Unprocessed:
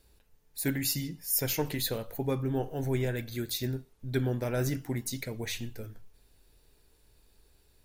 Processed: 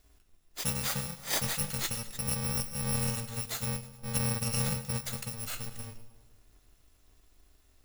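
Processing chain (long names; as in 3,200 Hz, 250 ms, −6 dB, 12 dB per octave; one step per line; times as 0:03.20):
samples in bit-reversed order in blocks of 128 samples
high-shelf EQ 8,500 Hz −7 dB
echo with a time of its own for lows and highs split 770 Hz, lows 156 ms, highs 104 ms, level −15 dB
level +1.5 dB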